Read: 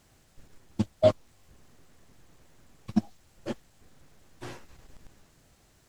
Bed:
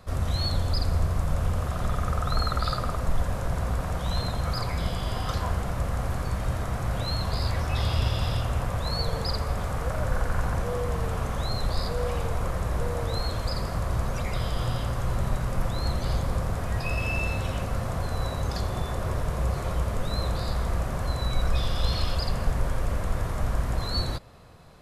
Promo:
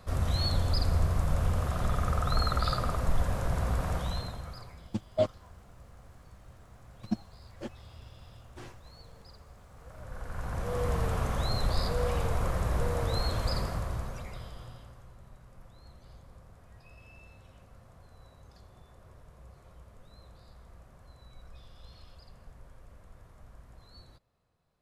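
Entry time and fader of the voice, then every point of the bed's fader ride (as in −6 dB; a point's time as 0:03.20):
4.15 s, −6.0 dB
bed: 0:03.96 −2 dB
0:04.93 −25 dB
0:09.69 −25 dB
0:10.84 −1.5 dB
0:13.56 −1.5 dB
0:15.15 −26 dB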